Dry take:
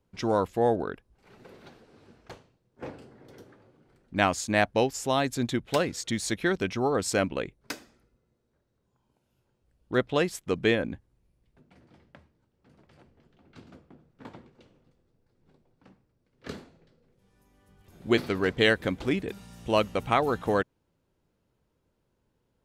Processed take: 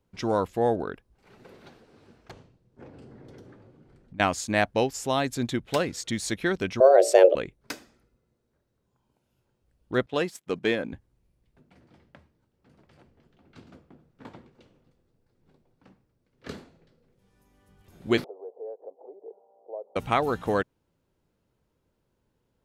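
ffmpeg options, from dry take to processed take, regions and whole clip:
-filter_complex "[0:a]asettb=1/sr,asplit=3[s0][s1][s2];[s0]atrim=end=2.314[s3];[s1]atrim=start=2.31:end=4.2,asetpts=PTS-STARTPTS,afade=t=in:d=0.004:c=qsin,afade=t=out:st=1.886:d=0.004:c=qsin,lowpass=9900,lowshelf=f=390:g=8.5,acompressor=threshold=0.00708:ratio=8:attack=3.2:release=140:knee=1:detection=peak[s4];[s2]atrim=start=4.196[s5];[s3][s4]acrossfade=d=0.004:c1=hsin:c2=qsin[s6];[s6][s5]acrossfade=d=0.004:c1=qsin:c2=hsin,asettb=1/sr,asplit=3[s7][s8][s9];[s7]atrim=end=6.804[s10];[s8]atrim=start=6.8:end=7.35,asetpts=PTS-STARTPTS,afade=t=in:d=0.004:c=qsin,afade=t=out:st=0.546:d=0.004:c=qsin,lowshelf=f=440:t=q:w=3:g=11,bandreject=f=60:t=h:w=6,bandreject=f=120:t=h:w=6,bandreject=f=180:t=h:w=6,bandreject=f=240:t=h:w=6,bandreject=f=300:t=h:w=6,bandreject=f=360:t=h:w=6,bandreject=f=420:t=h:w=6,bandreject=f=480:t=h:w=6,bandreject=f=540:t=h:w=6,afreqshift=270[s11];[s9]atrim=start=7.346[s12];[s10][s11]acrossfade=d=0.004:c1=hsin:c2=qsin[s13];[s13][s12]acrossfade=d=0.004:c1=qsin:c2=hsin,asettb=1/sr,asplit=3[s14][s15][s16];[s14]atrim=end=10.064[s17];[s15]atrim=start=10.06:end=10.93,asetpts=PTS-STARTPTS,afade=t=in:d=0.004:c=qsin,afade=t=out:st=0.866:d=0.004:c=qsin,aeval=exprs='if(lt(val(0),0),0.708*val(0),val(0))':c=same,highpass=140,agate=range=0.447:threshold=0.0112:ratio=16:release=100:detection=peak[s18];[s16]atrim=start=10.926[s19];[s17][s18]acrossfade=d=0.004:c1=hsin:c2=qsin[s20];[s20][s19]acrossfade=d=0.004:c1=qsin:c2=hsin,asettb=1/sr,asplit=3[s21][s22][s23];[s21]atrim=end=18.244[s24];[s22]atrim=start=18.24:end=19.96,asetpts=PTS-STARTPTS,afade=t=in:d=0.004:c=qsin,afade=t=out:st=1.716:d=0.004:c=qsin,aemphasis=mode=reproduction:type=bsi,acompressor=threshold=0.0355:ratio=6:attack=3.2:release=140:knee=1:detection=peak,asuperpass=centerf=590:order=8:qfactor=1.4[s25];[s23]atrim=start=19.956[s26];[s24][s25]acrossfade=d=0.004:c1=hsin:c2=qsin[s27];[s27][s26]acrossfade=d=0.004:c1=qsin:c2=hsin"

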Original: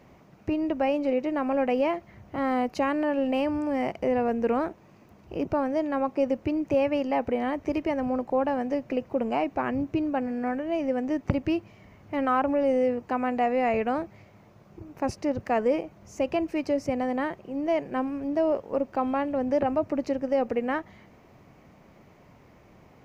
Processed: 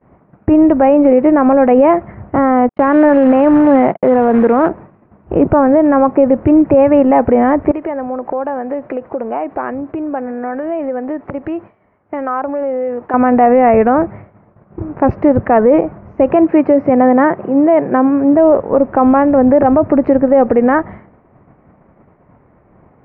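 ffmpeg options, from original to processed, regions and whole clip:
-filter_complex "[0:a]asettb=1/sr,asplit=3[s0][s1][s2];[s0]atrim=end=2.694[s3];[s1]atrim=start=2.69:end=4.69,asetpts=PTS-STARTPTS,afade=t=in:d=0.004:c=qsin,afade=t=out:st=1.996:d=0.004:c=qsin,highpass=f=130:w=0.5412,highpass=f=130:w=1.3066,acrusher=bits=3:mode=log:mix=0:aa=0.000001,agate=range=0.00141:threshold=0.0126:ratio=16:release=100:detection=peak[s4];[s2]atrim=start=4.686[s5];[s3][s4]acrossfade=d=0.004:c1=hsin:c2=qsin[s6];[s6][s5]acrossfade=d=0.004:c1=qsin:c2=hsin,asettb=1/sr,asplit=3[s7][s8][s9];[s7]atrim=end=7.714[s10];[s8]atrim=start=7.71:end=13.14,asetpts=PTS-STARTPTS,afade=t=in:d=0.004:c=qsin,afade=t=out:st=5.426:d=0.004:c=qsin,acompressor=threshold=0.0178:ratio=5:attack=3.2:release=140:knee=1:detection=peak,bass=f=250:g=-12,treble=f=4000:g=7[s11];[s9]atrim=start=13.136[s12];[s10][s11]acrossfade=d=0.004:c1=hsin:c2=qsin[s13];[s13][s12]acrossfade=d=0.004:c1=qsin:c2=hsin,asettb=1/sr,asplit=3[s14][s15][s16];[s14]atrim=end=16.304[s17];[s15]atrim=start=16.3:end=18.34,asetpts=PTS-STARTPTS,afade=t=in:d=0.004:c=qsin,afade=t=out:st=2.036:d=0.004:c=qsin,acompressor=mode=upward:threshold=0.0158:ratio=2.5:attack=3.2:release=140:knee=2.83:detection=peak,highpass=140,lowpass=4800[s18];[s16]atrim=start=18.336[s19];[s17][s18]acrossfade=d=0.004:c1=hsin:c2=qsin[s20];[s20][s19]acrossfade=d=0.004:c1=qsin:c2=hsin,lowpass=f=1700:w=0.5412,lowpass=f=1700:w=1.3066,agate=range=0.0224:threshold=0.00631:ratio=3:detection=peak,alimiter=level_in=11.2:limit=0.891:release=50:level=0:latency=1,volume=0.891"

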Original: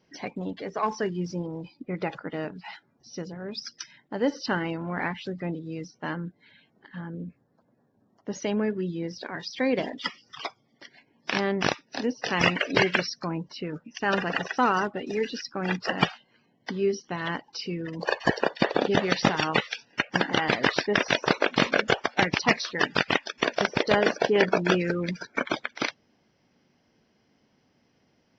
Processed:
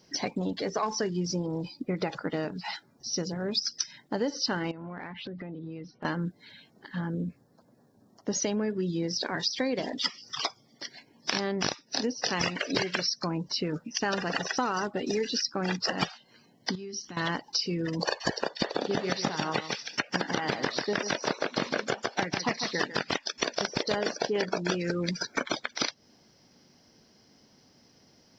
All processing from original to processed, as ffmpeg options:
-filter_complex "[0:a]asettb=1/sr,asplit=3[s0][s1][s2];[s0]atrim=end=4.714[s3];[s1]atrim=start=4.71:end=6.05,asetpts=PTS-STARTPTS,afade=t=in:d=0.004:c=qsin,afade=t=out:st=1.336:d=0.004:c=qsin,lowpass=f=3100:w=0.5412,lowpass=f=3100:w=1.3066,acompressor=threshold=0.01:ratio=12:attack=3.2:release=140:knee=1:detection=peak[s4];[s2]atrim=start=6.046[s5];[s3][s4]acrossfade=d=0.004:c1=hsin:c2=qsin[s6];[s6][s5]acrossfade=d=0.004:c1=qsin:c2=hsin,asettb=1/sr,asplit=3[s7][s8][s9];[s7]atrim=end=16.754[s10];[s8]atrim=start=16.75:end=17.17,asetpts=PTS-STARTPTS,afade=t=in:d=0.004:c=qsin,afade=t=out:st=0.416:d=0.004:c=qsin,equalizer=f=570:w=1.1:g=-9,acompressor=threshold=0.00631:ratio=5:attack=3.2:release=140:knee=1:detection=peak[s11];[s9]atrim=start=17.166[s12];[s10][s11]acrossfade=d=0.004:c1=hsin:c2=qsin[s13];[s13][s12]acrossfade=d=0.004:c1=qsin:c2=hsin,asettb=1/sr,asplit=3[s14][s15][s16];[s14]atrim=end=18.734[s17];[s15]atrim=start=18.73:end=23.11,asetpts=PTS-STARTPTS,afade=t=in:d=0.004:c=qsin,afade=t=out:st=4.376:d=0.004:c=qsin,acrossover=split=2600[s18][s19];[s19]acompressor=threshold=0.0158:ratio=4:attack=1:release=60[s20];[s18][s20]amix=inputs=2:normalize=0,highpass=98,aecho=1:1:146:0.335,atrim=end_sample=193158[s21];[s16]atrim=start=23.106[s22];[s17][s21]acrossfade=d=0.004:c1=hsin:c2=qsin[s23];[s23][s22]acrossfade=d=0.004:c1=qsin:c2=hsin,highshelf=f=3600:t=q:w=1.5:g=7.5,acompressor=threshold=0.0282:ratio=6,volume=1.78"

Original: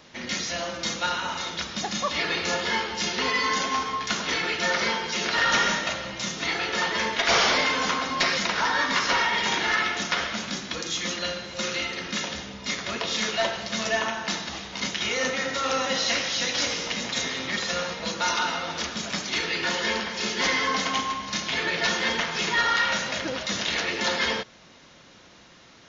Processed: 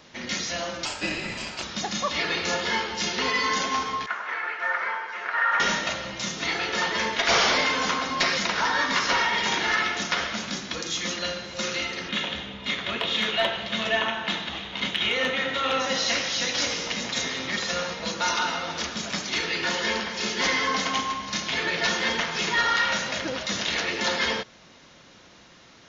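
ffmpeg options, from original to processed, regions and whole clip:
-filter_complex "[0:a]asettb=1/sr,asplit=3[s0][s1][s2];[s0]atrim=end=0.854[s3];[s1]atrim=start=0.85:end=1.63,asetpts=PTS-STARTPTS,afade=t=in:d=0.004:c=qsin,afade=t=out:st=0.776:d=0.004:c=qsin,equalizer=f=1700:t=o:w=0.29:g=5,aeval=exprs='val(0)*sin(2*PI*1100*n/s)':c=same[s4];[s2]atrim=start=1.626[s5];[s3][s4]acrossfade=d=0.004:c1=hsin:c2=qsin[s6];[s6][s5]acrossfade=d=0.004:c1=qsin:c2=hsin,asettb=1/sr,asplit=3[s7][s8][s9];[s7]atrim=end=4.064[s10];[s8]atrim=start=4.06:end=5.6,asetpts=PTS-STARTPTS,afade=t=in:d=0.004:c=qsin,afade=t=out:st=1.536:d=0.004:c=qsin,acrossover=split=3600[s11][s12];[s12]acompressor=threshold=0.00562:ratio=4:attack=1:release=60[s13];[s11][s13]amix=inputs=2:normalize=0,highpass=880,highshelf=f=2400:t=q:w=1.5:g=-13[s14];[s9]atrim=start=5.596[s15];[s10][s14]acrossfade=d=0.004:c1=hsin:c2=qsin[s16];[s16][s15]acrossfade=d=0.004:c1=qsin:c2=hsin,asettb=1/sr,asplit=3[s17][s18][s19];[s17]atrim=end=12.094[s20];[s18]atrim=start=12.09:end=15.8,asetpts=PTS-STARTPTS,afade=t=in:d=0.004:c=qsin,afade=t=out:st=3.706:d=0.004:c=qsin,highshelf=f=4200:t=q:w=3:g=-7,asoftclip=type=hard:threshold=0.2[s21];[s19]atrim=start=15.796[s22];[s20][s21]acrossfade=d=0.004:c1=hsin:c2=qsin[s23];[s23][s22]acrossfade=d=0.004:c1=qsin:c2=hsin"

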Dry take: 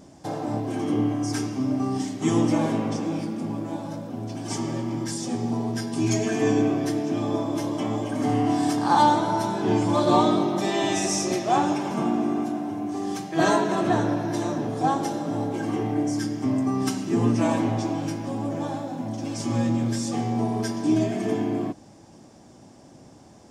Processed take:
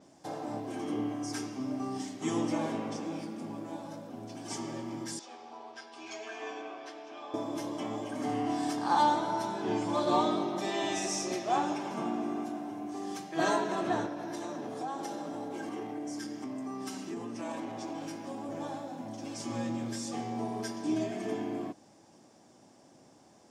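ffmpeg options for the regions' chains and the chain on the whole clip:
-filter_complex "[0:a]asettb=1/sr,asplit=3[s0][s1][s2];[s0]atrim=end=5.194[s3];[s1]atrim=start=5.19:end=7.34,asetpts=PTS-STARTPTS,afade=t=in:d=0.004:c=qsin,afade=t=out:st=2.146:d=0.004:c=qsin,highpass=790,lowpass=3500,equalizer=f=1900:w=6.2:g=-7.5[s4];[s2]atrim=start=7.336[s5];[s3][s4]acrossfade=d=0.004:c1=hsin:c2=qsin[s6];[s6][s5]acrossfade=d=0.004:c1=qsin:c2=hsin,asettb=1/sr,asplit=3[s7][s8][s9];[s7]atrim=end=14.064[s10];[s8]atrim=start=14.06:end=18.49,asetpts=PTS-STARTPTS,afade=t=in:d=0.004:c=qsin,afade=t=out:st=4.426:d=0.004:c=qsin,acompressor=threshold=0.0631:ratio=6:attack=3.2:release=140:knee=1:detection=peak,highpass=150[s11];[s9]atrim=start=18.486[s12];[s10][s11]acrossfade=d=0.004:c1=hsin:c2=qsin[s13];[s13][s12]acrossfade=d=0.004:c1=qsin:c2=hsin,highpass=f=310:p=1,adynamicequalizer=threshold=0.00501:dfrequency=7300:dqfactor=0.7:tfrequency=7300:tqfactor=0.7:attack=5:release=100:ratio=0.375:range=2:mode=cutabove:tftype=highshelf,volume=0.473"

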